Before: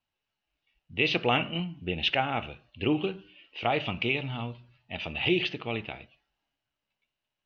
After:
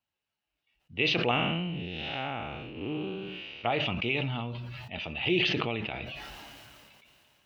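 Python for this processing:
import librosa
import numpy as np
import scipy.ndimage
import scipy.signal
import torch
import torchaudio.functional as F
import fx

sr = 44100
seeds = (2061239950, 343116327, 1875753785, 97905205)

y = fx.spec_blur(x, sr, span_ms=248.0, at=(1.31, 3.64))
y = scipy.signal.sosfilt(scipy.signal.butter(2, 47.0, 'highpass', fs=sr, output='sos'), y)
y = fx.sustainer(y, sr, db_per_s=21.0)
y = F.gain(torch.from_numpy(y), -2.5).numpy()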